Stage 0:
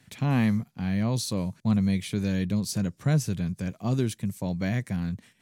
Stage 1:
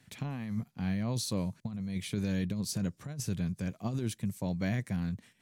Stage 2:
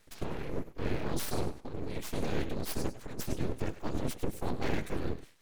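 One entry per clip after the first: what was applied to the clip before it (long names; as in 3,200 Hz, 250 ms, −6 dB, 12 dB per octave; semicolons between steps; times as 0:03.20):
compressor whose output falls as the input rises −26 dBFS, ratio −0.5; level −5.5 dB
feedback echo with a high-pass in the loop 100 ms, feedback 25%, high-pass 190 Hz, level −12 dB; random phases in short frames; full-wave rectification; level +2 dB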